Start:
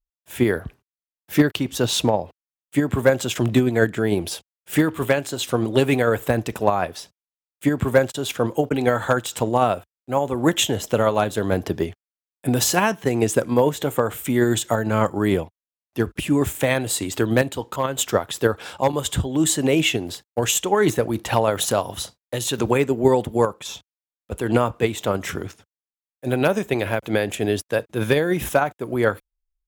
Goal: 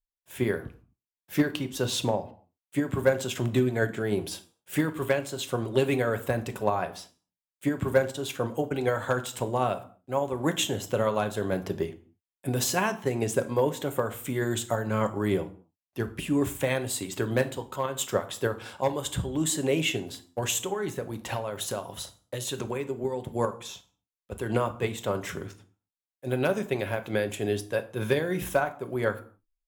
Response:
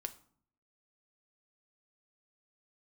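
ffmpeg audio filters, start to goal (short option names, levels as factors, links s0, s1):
-filter_complex "[0:a]asettb=1/sr,asplit=3[s0][s1][s2];[s0]atrim=end=20.654[s3];[s1]atrim=start=20.65:end=23.27,asetpts=PTS-STARTPTS,afade=t=in:d=0.004:c=qsin,afade=t=out:st=2.616:d=0.004:c=qsin,acompressor=threshold=0.0891:ratio=6[s4];[s2]atrim=start=23.266[s5];[s3][s4]acrossfade=d=0.004:c1=hsin:c2=qsin[s6];[s6][s5]acrossfade=d=0.004:c1=qsin:c2=hsin[s7];[1:a]atrim=start_sample=2205,afade=t=out:st=0.32:d=0.01,atrim=end_sample=14553[s8];[s7][s8]afir=irnorm=-1:irlink=0,volume=0.562"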